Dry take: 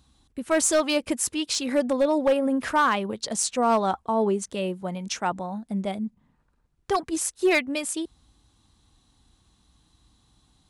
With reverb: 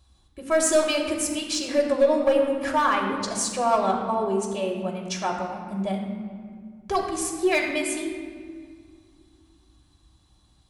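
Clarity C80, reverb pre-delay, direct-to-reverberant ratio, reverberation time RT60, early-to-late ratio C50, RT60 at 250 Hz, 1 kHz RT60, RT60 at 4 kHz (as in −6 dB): 5.0 dB, 3 ms, −1.0 dB, 1.9 s, 4.0 dB, 3.0 s, 1.8 s, 1.2 s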